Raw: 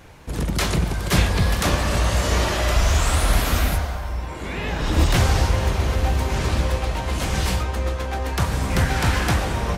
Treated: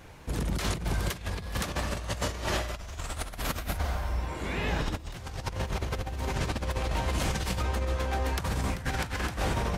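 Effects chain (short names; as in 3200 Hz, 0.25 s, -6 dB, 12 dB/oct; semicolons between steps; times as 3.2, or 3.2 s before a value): negative-ratio compressor -23 dBFS, ratio -0.5; gain -7 dB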